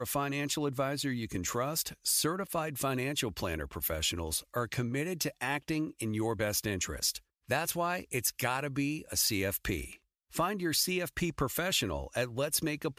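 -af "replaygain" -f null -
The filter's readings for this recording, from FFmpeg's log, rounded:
track_gain = +14.2 dB
track_peak = 0.123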